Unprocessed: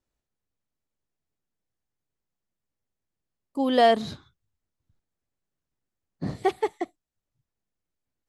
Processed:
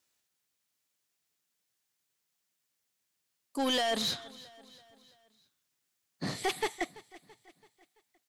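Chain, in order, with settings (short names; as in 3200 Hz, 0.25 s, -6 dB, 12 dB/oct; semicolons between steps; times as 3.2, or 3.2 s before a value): HPF 120 Hz 12 dB/oct; tilt shelf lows -9 dB, about 1200 Hz; limiter -20 dBFS, peak gain reduction 12.5 dB; soft clip -29 dBFS, distortion -11 dB; feedback echo 0.334 s, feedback 51%, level -20 dB; gain +4.5 dB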